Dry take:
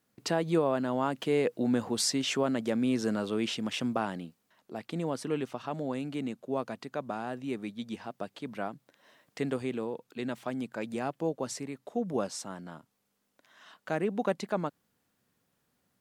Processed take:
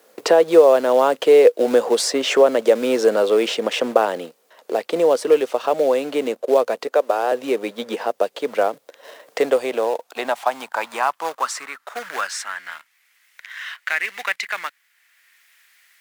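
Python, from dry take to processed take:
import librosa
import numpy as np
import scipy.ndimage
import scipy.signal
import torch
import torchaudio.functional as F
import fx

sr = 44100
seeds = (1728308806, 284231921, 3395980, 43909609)

p1 = fx.highpass(x, sr, hz=290.0, slope=24, at=(6.87, 7.32))
p2 = fx.quant_companded(p1, sr, bits=4)
p3 = p1 + (p2 * 10.0 ** (-8.0 / 20.0))
p4 = fx.filter_sweep_highpass(p3, sr, from_hz=490.0, to_hz=2000.0, start_s=9.27, end_s=12.76, q=3.6)
p5 = fx.band_squash(p4, sr, depth_pct=40)
y = p5 * 10.0 ** (8.0 / 20.0)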